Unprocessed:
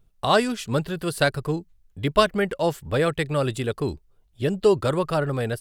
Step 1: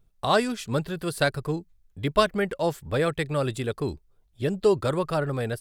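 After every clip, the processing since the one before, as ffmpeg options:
-af "bandreject=f=2900:w=18,volume=0.75"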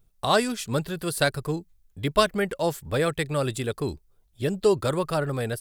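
-af "highshelf=f=5700:g=8"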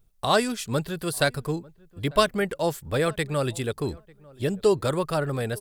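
-filter_complex "[0:a]asplit=2[s0][s1];[s1]adelay=896,lowpass=f=1200:p=1,volume=0.0668,asplit=2[s2][s3];[s3]adelay=896,lowpass=f=1200:p=1,volume=0.2[s4];[s0][s2][s4]amix=inputs=3:normalize=0"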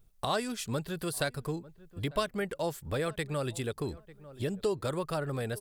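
-af "acompressor=threshold=0.0178:ratio=2"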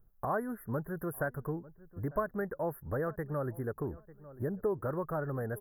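-af "asuperstop=centerf=4800:order=20:qfactor=0.52,volume=0.841"

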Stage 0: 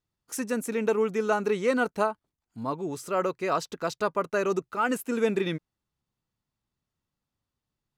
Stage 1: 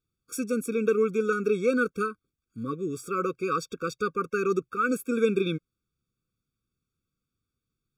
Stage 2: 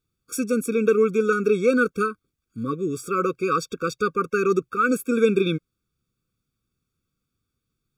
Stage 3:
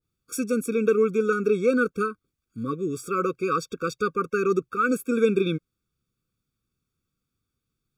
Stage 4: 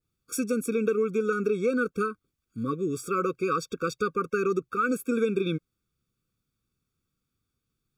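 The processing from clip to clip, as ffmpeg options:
-af "afftfilt=real='re*eq(mod(floor(b*sr/1024/540),2),0)':imag='im*eq(mod(floor(b*sr/1024/540),2),0)':win_size=1024:overlap=0.75,volume=1.19"
-af "acontrast=30"
-af "adynamicequalizer=threshold=0.0224:dfrequency=1500:dqfactor=0.7:tfrequency=1500:tqfactor=0.7:attack=5:release=100:ratio=0.375:range=1.5:mode=cutabove:tftype=highshelf,volume=0.794"
-af "acompressor=threshold=0.0708:ratio=3"

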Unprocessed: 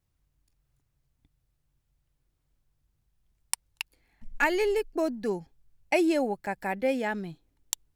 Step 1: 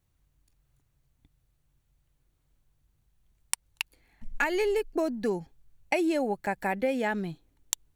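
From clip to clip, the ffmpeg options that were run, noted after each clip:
-af "bandreject=f=5100:w=12,acompressor=threshold=0.0447:ratio=6,volume=1.5"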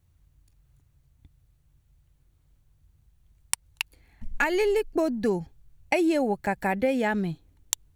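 -af "equalizer=f=78:w=0.77:g=10,volume=1.33"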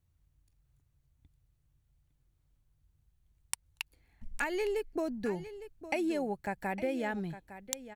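-af "aecho=1:1:858:0.211,volume=0.355"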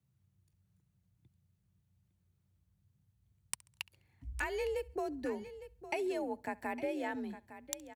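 -af "afreqshift=47,aecho=1:1:68|136|204:0.0631|0.0259|0.0106,volume=0.668"

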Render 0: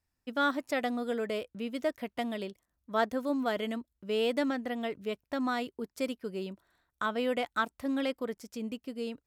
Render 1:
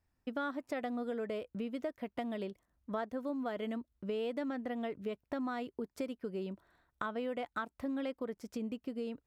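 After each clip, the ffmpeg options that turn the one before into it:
-af "highshelf=f=2700:g=-11,acompressor=threshold=0.00891:ratio=4,volume=1.68"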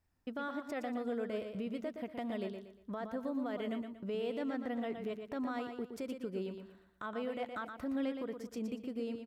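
-af "alimiter=level_in=2.37:limit=0.0631:level=0:latency=1:release=45,volume=0.422,aecho=1:1:118|236|354|472:0.447|0.156|0.0547|0.0192"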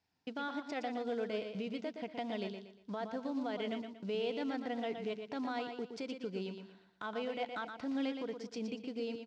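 -af "acrusher=bits=8:mode=log:mix=0:aa=0.000001,highpass=210,equalizer=f=240:t=q:w=4:g=-6,equalizer=f=360:t=q:w=4:g=-8,equalizer=f=570:t=q:w=4:g=-9,equalizer=f=1200:t=q:w=4:g=-10,equalizer=f=1800:t=q:w=4:g=-6,equalizer=f=4600:t=q:w=4:g=3,lowpass=f=5800:w=0.5412,lowpass=f=5800:w=1.3066,volume=2"

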